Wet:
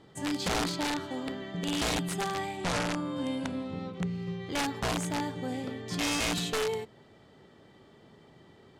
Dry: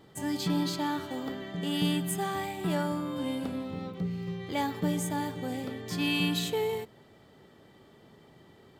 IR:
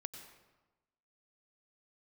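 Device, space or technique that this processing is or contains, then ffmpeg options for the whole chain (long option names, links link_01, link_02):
overflowing digital effects unit: -filter_complex "[0:a]aeval=exprs='(mod(15*val(0)+1,2)-1)/15':channel_layout=same,lowpass=8600,asettb=1/sr,asplit=3[link_01][link_02][link_03];[link_01]atrim=end=2.574[link_04];[link_02]atrim=start=2.57:end=4.12,asetpts=PTS-STARTPTS,afade=type=in:duration=0.004:curve=qsin,afade=type=out:start_time=1.546:duration=0.004:curve=qsin,lowpass=frequency=11000:width=0.5412,lowpass=frequency=11000:width=1.3066[link_05];[link_03]atrim=start=4.116[link_06];[link_04][link_05]acrossfade=duration=0.004:curve1=hsin:curve2=qsin[link_07];[link_07][link_06]acrossfade=duration=0.004:curve1=qsin:curve2=hsin"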